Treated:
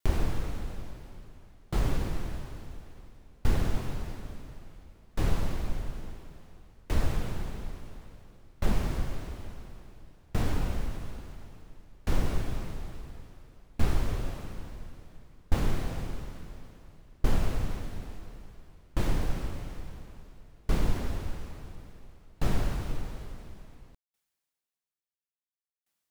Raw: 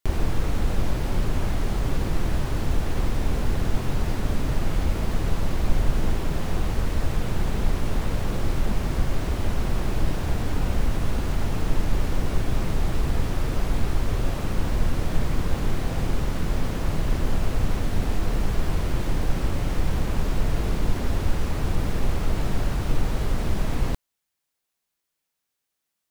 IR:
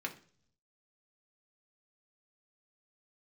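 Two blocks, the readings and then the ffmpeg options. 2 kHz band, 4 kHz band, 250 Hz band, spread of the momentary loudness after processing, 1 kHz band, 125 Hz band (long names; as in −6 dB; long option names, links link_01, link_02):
−9.0 dB, −9.0 dB, −9.0 dB, 20 LU, −9.0 dB, −9.0 dB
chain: -af "aeval=exprs='val(0)*pow(10,-34*if(lt(mod(0.58*n/s,1),2*abs(0.58)/1000),1-mod(0.58*n/s,1)/(2*abs(0.58)/1000),(mod(0.58*n/s,1)-2*abs(0.58)/1000)/(1-2*abs(0.58)/1000))/20)':channel_layout=same"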